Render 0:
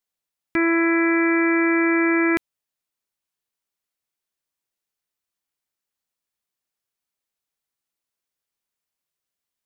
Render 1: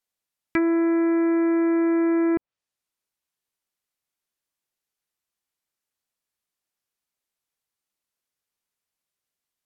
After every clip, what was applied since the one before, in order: treble ducked by the level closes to 770 Hz, closed at -17 dBFS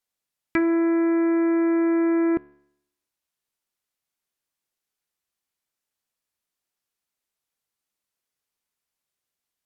resonator 72 Hz, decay 0.76 s, harmonics all, mix 50%; gain +5.5 dB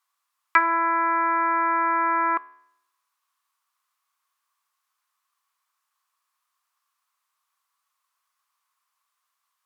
resonant high-pass 1100 Hz, resonance Q 8.2; gain +4.5 dB

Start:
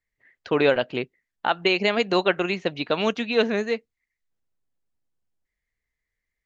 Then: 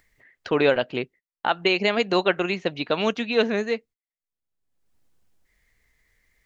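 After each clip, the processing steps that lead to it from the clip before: gate -46 dBFS, range -29 dB; upward compressor, threshold -31 dBFS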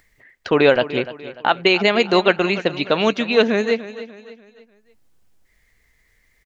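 feedback echo 0.295 s, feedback 41%, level -15 dB; gain +5.5 dB

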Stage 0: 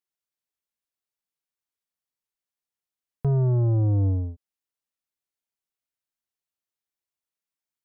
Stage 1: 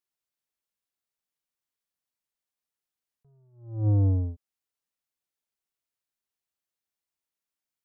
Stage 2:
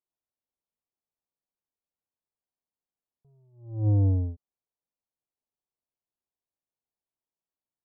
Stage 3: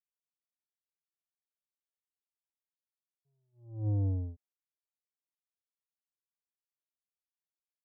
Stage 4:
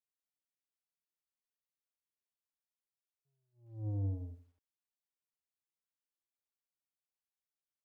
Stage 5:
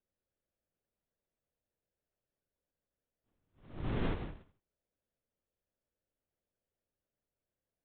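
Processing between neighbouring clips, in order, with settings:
attack slew limiter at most 110 dB/s
LPF 1000 Hz 24 dB/oct
expander -55 dBFS; gain -8 dB
lo-fi delay 81 ms, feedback 35%, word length 11-bit, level -12 dB; gain -6 dB
sample sorter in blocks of 256 samples; LPC vocoder at 8 kHz whisper; gain +1.5 dB

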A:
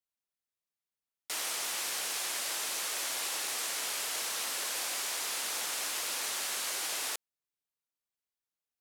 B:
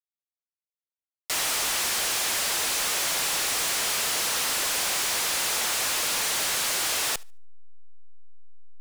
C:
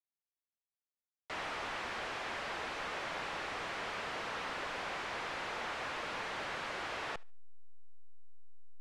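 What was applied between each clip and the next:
sample leveller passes 5; backlash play -29 dBFS; thinning echo 73 ms, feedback 21%, level -24 dB
LPF 1900 Hz 12 dB/oct; gain -6 dB

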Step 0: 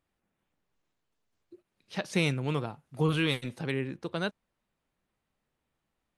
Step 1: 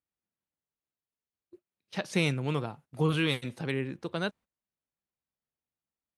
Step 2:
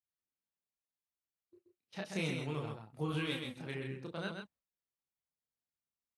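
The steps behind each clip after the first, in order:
HPF 42 Hz; gate -51 dBFS, range -16 dB
chorus voices 2, 0.36 Hz, delay 29 ms, depth 2.6 ms; echo 0.13 s -5.5 dB; gain -6 dB

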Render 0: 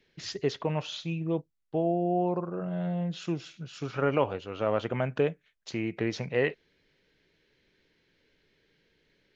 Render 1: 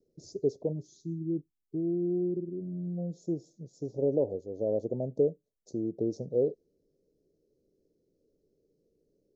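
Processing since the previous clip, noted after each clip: inverse Chebyshev band-stop 1200–2900 Hz, stop band 60 dB; spectral gain 0.73–2.98, 410–1700 Hz -21 dB; tone controls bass -8 dB, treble -10 dB; gain +2.5 dB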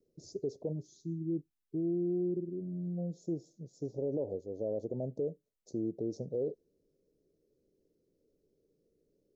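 limiter -24.5 dBFS, peak gain reduction 8.5 dB; gain -2 dB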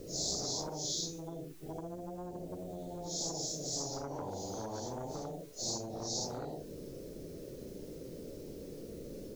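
phase scrambler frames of 0.2 s; compressor 2:1, threshold -40 dBFS, peak gain reduction 8 dB; spectral compressor 10:1; gain +4.5 dB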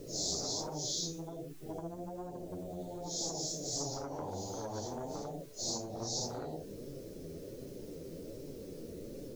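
flange 1.3 Hz, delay 6.6 ms, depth 6.4 ms, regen +41%; gain +4 dB

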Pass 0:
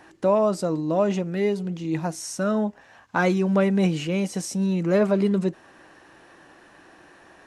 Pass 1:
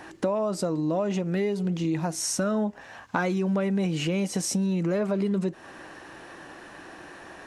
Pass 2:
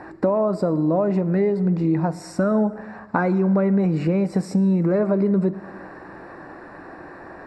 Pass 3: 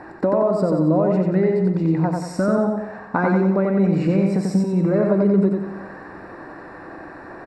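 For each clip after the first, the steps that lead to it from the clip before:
in parallel at -2 dB: limiter -20 dBFS, peak gain reduction 11.5 dB; on the sum: compressor, threshold -25 dBFS, peak gain reduction 11.5 dB; gain +1.5 dB
running mean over 14 samples; plate-style reverb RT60 1.8 s, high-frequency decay 0.6×, DRR 15 dB; gain +6.5 dB
feedback echo 91 ms, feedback 44%, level -3 dB

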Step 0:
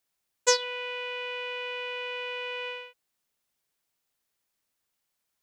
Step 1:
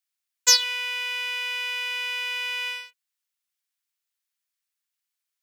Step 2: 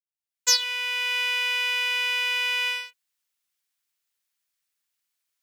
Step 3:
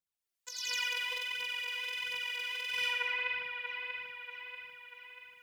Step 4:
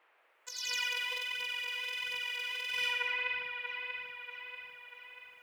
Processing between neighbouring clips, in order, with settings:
sample leveller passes 2; dynamic EQ 5300 Hz, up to +6 dB, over -36 dBFS, Q 1; HPF 1500 Hz 12 dB/oct
opening faded in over 1.19 s; gain +4 dB
phaser 1.4 Hz, delay 3.1 ms, feedback 67%; split-band echo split 2700 Hz, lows 0.638 s, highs 85 ms, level -7 dB; negative-ratio compressor -29 dBFS, ratio -1; gain -7.5 dB
band noise 420–2500 Hz -69 dBFS

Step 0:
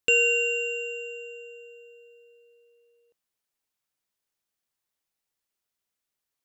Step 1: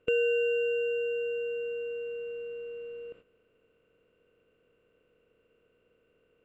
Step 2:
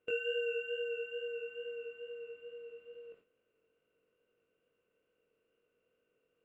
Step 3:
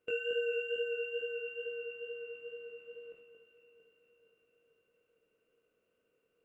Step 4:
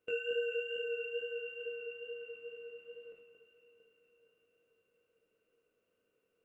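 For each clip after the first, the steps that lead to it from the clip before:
per-bin compression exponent 0.4; LPF 1200 Hz 12 dB/oct; gate -52 dBFS, range -11 dB
dynamic EQ 1700 Hz, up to +6 dB, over -47 dBFS, Q 0.81; chorus 2.3 Hz, delay 18.5 ms, depth 3.8 ms; low shelf 140 Hz -10 dB; gain -6 dB
echo with dull and thin repeats by turns 0.226 s, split 1400 Hz, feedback 75%, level -6.5 dB
flange 1.3 Hz, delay 9 ms, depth 4 ms, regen -56%; gain +2.5 dB

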